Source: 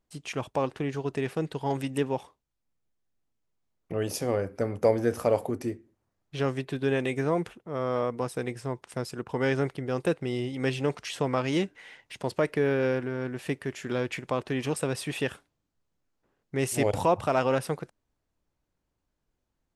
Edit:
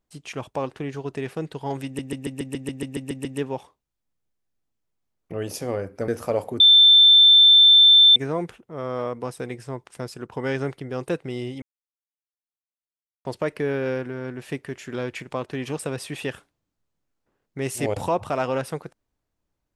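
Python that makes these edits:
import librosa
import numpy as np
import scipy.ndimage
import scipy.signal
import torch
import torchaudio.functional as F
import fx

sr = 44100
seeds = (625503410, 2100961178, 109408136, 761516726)

y = fx.edit(x, sr, fx.stutter(start_s=1.85, slice_s=0.14, count=11),
    fx.cut(start_s=4.68, length_s=0.37),
    fx.bleep(start_s=5.57, length_s=1.56, hz=3550.0, db=-9.0),
    fx.silence(start_s=10.59, length_s=1.63), tone=tone)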